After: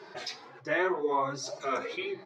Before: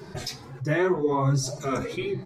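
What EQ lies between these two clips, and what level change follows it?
HPF 510 Hz 12 dB/oct; air absorption 230 m; high shelf 3400 Hz +8.5 dB; 0.0 dB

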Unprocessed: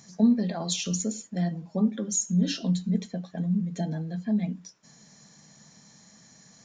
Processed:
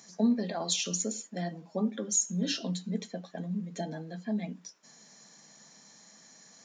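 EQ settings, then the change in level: HPF 290 Hz 12 dB/oct; 0.0 dB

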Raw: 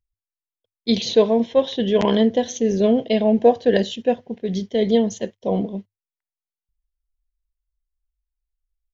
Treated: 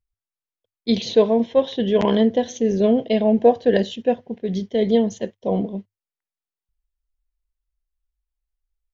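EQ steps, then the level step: high shelf 3800 Hz -6.5 dB; 0.0 dB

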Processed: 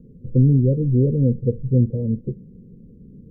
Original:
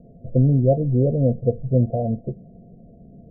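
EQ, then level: Butterworth band-stop 680 Hz, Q 1.2; +2.0 dB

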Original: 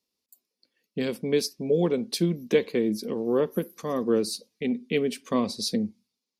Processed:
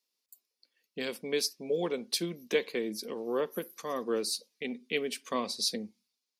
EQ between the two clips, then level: HPF 900 Hz 6 dB/oct; 0.0 dB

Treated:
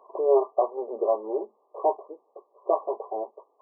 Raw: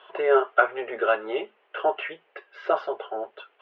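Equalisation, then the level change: brick-wall FIR band-pass 200–1200 Hz; 0.0 dB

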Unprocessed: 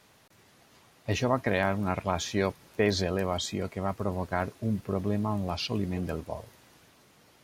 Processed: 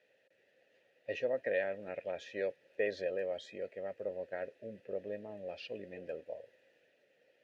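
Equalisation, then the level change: vowel filter e; +1.5 dB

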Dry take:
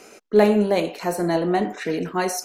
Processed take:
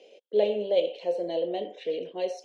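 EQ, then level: double band-pass 1300 Hz, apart 2.6 oct; air absorption 67 m; +3.5 dB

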